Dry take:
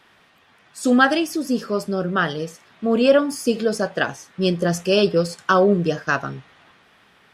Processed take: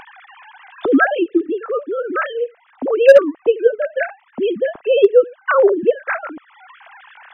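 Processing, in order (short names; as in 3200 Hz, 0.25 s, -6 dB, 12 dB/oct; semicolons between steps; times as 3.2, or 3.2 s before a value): sine-wave speech; LPF 1900 Hz 6 dB/oct; in parallel at -2 dB: upward compressor, threshold -20 dBFS; on the sum: overloaded stage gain 1 dB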